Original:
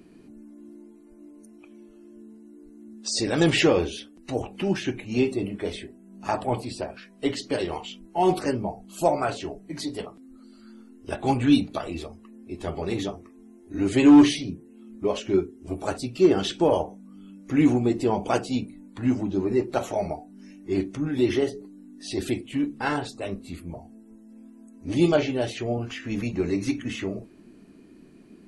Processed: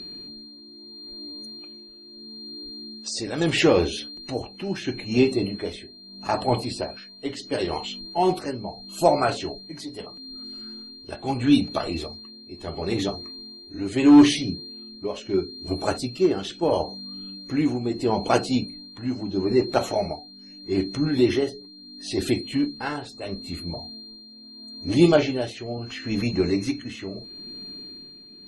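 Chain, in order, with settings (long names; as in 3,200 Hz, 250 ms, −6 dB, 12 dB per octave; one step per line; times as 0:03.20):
steady tone 4,200 Hz −40 dBFS
amplitude tremolo 0.76 Hz, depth 64%
level that may rise only so fast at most 550 dB per second
level +4 dB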